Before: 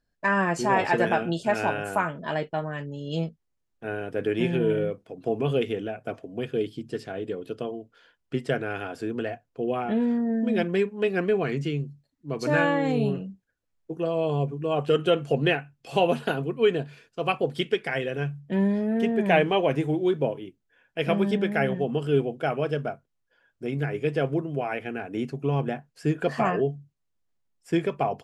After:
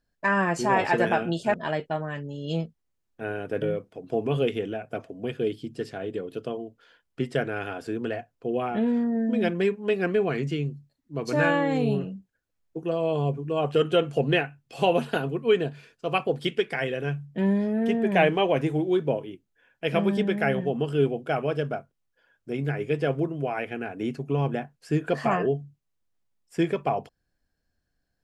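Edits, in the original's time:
1.54–2.17 s: delete
4.25–4.76 s: delete

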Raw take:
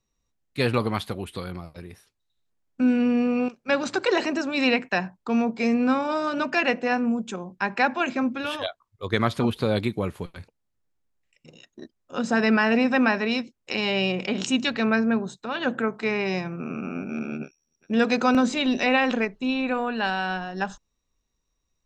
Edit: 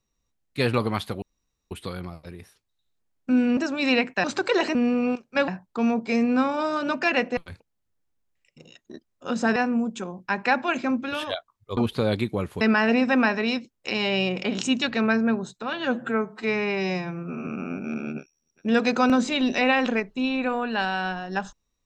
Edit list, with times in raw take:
1.22 s: insert room tone 0.49 s
3.08–3.81 s: swap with 4.32–4.99 s
9.09–9.41 s: delete
10.25–12.44 s: move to 6.88 s
15.56–16.72 s: stretch 1.5×

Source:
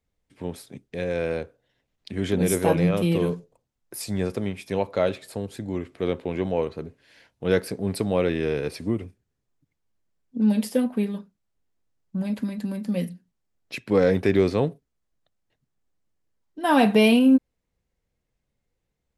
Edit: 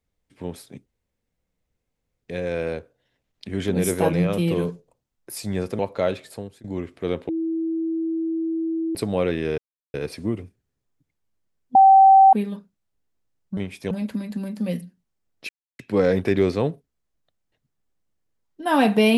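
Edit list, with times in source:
0.86 s: insert room tone 1.36 s
4.43–4.77 s: move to 12.19 s
5.27–5.62 s: fade out, to -19.5 dB
6.27–7.93 s: bleep 326 Hz -22 dBFS
8.56 s: insert silence 0.36 s
10.37–10.95 s: bleep 774 Hz -8 dBFS
13.77 s: insert silence 0.30 s

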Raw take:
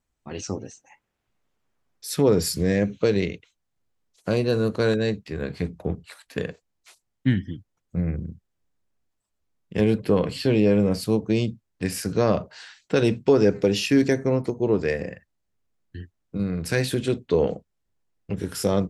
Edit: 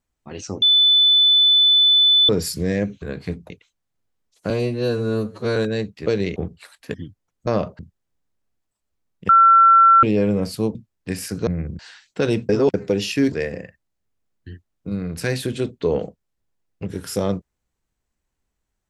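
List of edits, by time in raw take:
0.62–2.29 s: bleep 3.5 kHz -11 dBFS
3.02–3.32 s: swap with 5.35–5.83 s
4.32–4.85 s: stretch 2×
6.41–7.43 s: delete
7.96–8.28 s: swap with 12.21–12.53 s
9.78–10.52 s: bleep 1.35 kHz -8 dBFS
11.24–11.49 s: delete
13.23–13.48 s: reverse
14.06–14.80 s: delete

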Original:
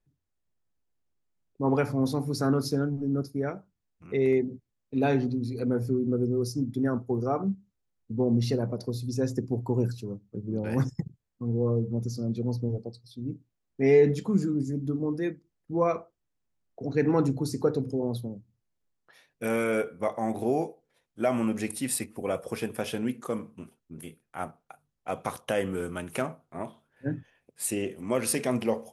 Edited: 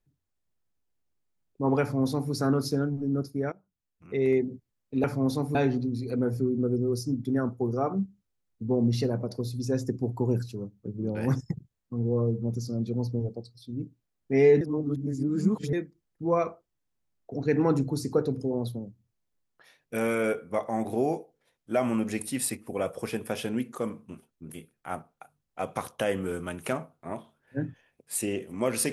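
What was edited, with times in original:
1.81–2.32 s: copy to 5.04 s
3.52–4.32 s: fade in linear, from -18.5 dB
14.10–15.22 s: reverse

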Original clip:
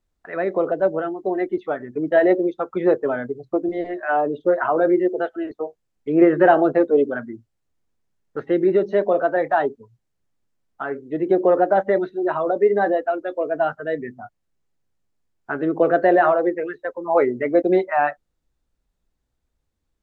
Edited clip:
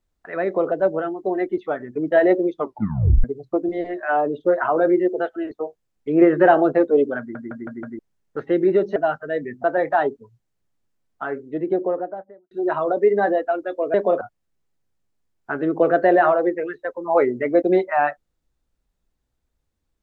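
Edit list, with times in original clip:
2.54 s: tape stop 0.70 s
7.19 s: stutter in place 0.16 s, 5 plays
8.96–9.23 s: swap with 13.53–14.21 s
10.85–12.10 s: studio fade out

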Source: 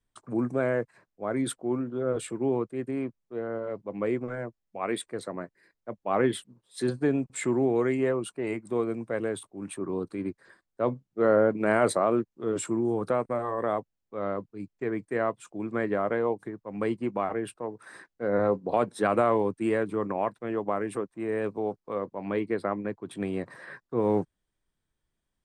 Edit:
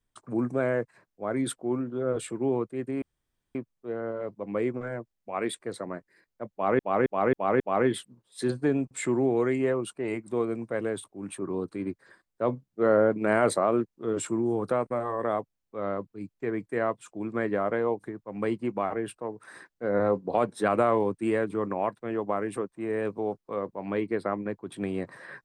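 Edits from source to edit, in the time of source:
3.02 s: insert room tone 0.53 s
5.99–6.26 s: loop, 5 plays

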